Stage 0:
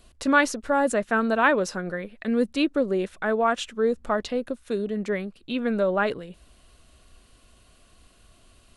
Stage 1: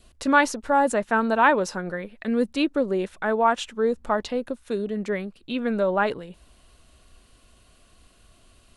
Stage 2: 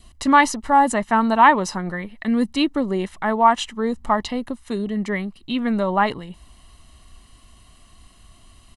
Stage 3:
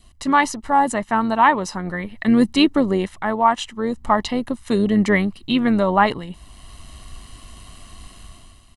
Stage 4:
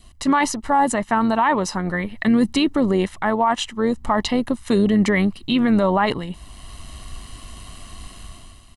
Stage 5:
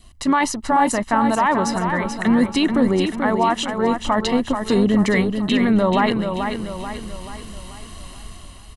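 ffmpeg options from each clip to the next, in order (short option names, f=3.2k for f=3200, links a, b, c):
-af "adynamicequalizer=threshold=0.00794:dfrequency=900:dqfactor=4.8:tfrequency=900:tqfactor=4.8:attack=5:release=100:ratio=0.375:range=4:mode=boostabove:tftype=bell"
-af "aecho=1:1:1:0.59,volume=3.5dB"
-af "dynaudnorm=f=110:g=9:m=11.5dB,tremolo=f=98:d=0.333,volume=-1dB"
-af "alimiter=limit=-12dB:level=0:latency=1:release=32,volume=3dB"
-af "aecho=1:1:435|870|1305|1740|2175|2610:0.473|0.227|0.109|0.0523|0.0251|0.0121"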